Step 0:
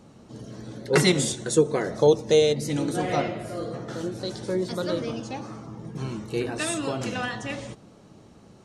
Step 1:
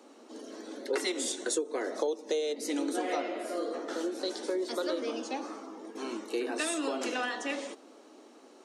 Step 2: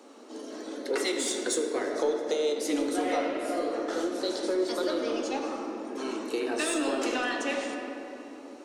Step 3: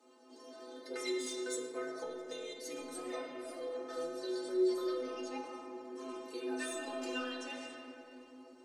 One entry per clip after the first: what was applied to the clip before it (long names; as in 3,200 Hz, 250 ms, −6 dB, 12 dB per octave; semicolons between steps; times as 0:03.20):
Butterworth high-pass 250 Hz 72 dB per octave; downward compressor 8 to 1, threshold −28 dBFS, peak gain reduction 15 dB
in parallel at −7 dB: soft clipping −34 dBFS, distortion −9 dB; on the sum: rectangular room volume 200 cubic metres, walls hard, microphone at 0.34 metres
stiff-string resonator 76 Hz, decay 0.82 s, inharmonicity 0.03; level +1.5 dB